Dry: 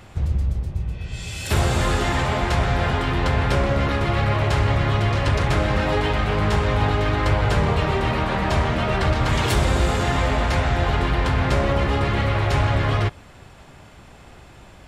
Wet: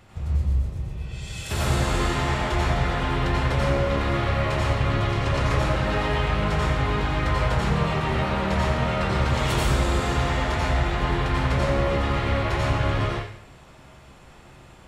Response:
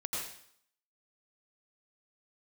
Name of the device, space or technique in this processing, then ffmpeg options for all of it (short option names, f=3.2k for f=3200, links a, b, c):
bathroom: -filter_complex "[1:a]atrim=start_sample=2205[a];[0:a][a]afir=irnorm=-1:irlink=0,volume=-5.5dB"